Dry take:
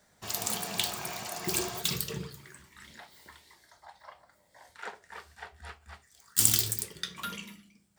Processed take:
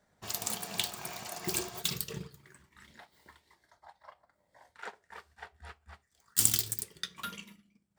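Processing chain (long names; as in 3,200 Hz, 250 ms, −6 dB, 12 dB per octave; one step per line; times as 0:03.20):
transient designer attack +2 dB, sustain −6 dB
one half of a high-frequency compander decoder only
level −3.5 dB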